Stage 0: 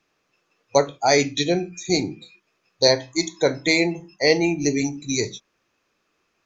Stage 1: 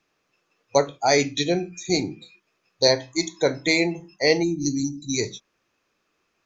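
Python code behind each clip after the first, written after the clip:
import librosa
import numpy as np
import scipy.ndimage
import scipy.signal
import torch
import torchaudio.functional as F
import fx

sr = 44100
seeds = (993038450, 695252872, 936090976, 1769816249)

y = fx.spec_box(x, sr, start_s=4.43, length_s=0.71, low_hz=360.0, high_hz=3600.0, gain_db=-22)
y = y * librosa.db_to_amplitude(-1.5)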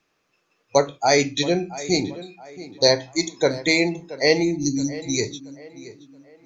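y = fx.echo_tape(x, sr, ms=676, feedback_pct=41, wet_db=-15, lp_hz=2600.0, drive_db=5.0, wow_cents=6)
y = y * librosa.db_to_amplitude(1.5)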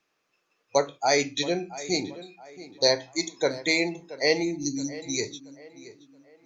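y = fx.low_shelf(x, sr, hz=200.0, db=-9.0)
y = y * librosa.db_to_amplitude(-4.0)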